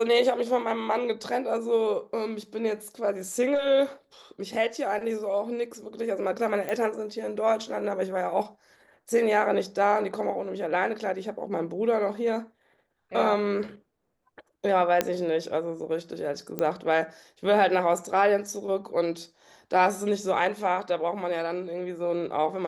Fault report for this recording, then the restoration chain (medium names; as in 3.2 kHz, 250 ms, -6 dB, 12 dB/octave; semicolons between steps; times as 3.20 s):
6.69 s: pop -18 dBFS
15.01 s: pop -8 dBFS
16.59 s: pop -15 dBFS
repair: de-click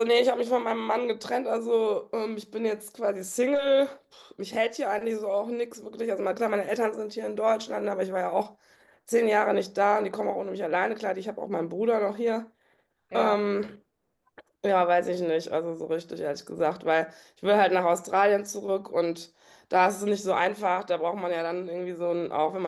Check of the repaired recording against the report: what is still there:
nothing left